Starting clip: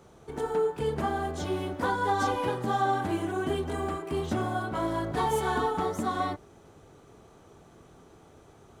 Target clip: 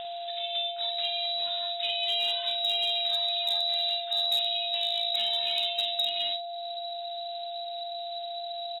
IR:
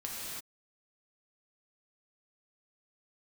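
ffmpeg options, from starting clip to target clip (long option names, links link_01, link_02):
-filter_complex "[0:a]asubboost=boost=7:cutoff=200,acrossover=split=100[link_01][link_02];[link_01]alimiter=level_in=5dB:limit=-24dB:level=0:latency=1:release=256,volume=-5dB[link_03];[link_03][link_02]amix=inputs=2:normalize=0,acompressor=mode=upward:threshold=-28dB:ratio=2.5,lowpass=frequency=3400:width_type=q:width=0.5098,lowpass=frequency=3400:width_type=q:width=0.6013,lowpass=frequency=3400:width_type=q:width=0.9,lowpass=frequency=3400:width_type=q:width=2.563,afreqshift=-4000,aeval=exprs='val(0)+0.0282*sin(2*PI*690*n/s)':channel_layout=same,asplit=2[link_04][link_05];[link_05]adelay=49,volume=-10dB[link_06];[link_04][link_06]amix=inputs=2:normalize=0,volume=16dB,asoftclip=hard,volume=-16dB,volume=-4.5dB"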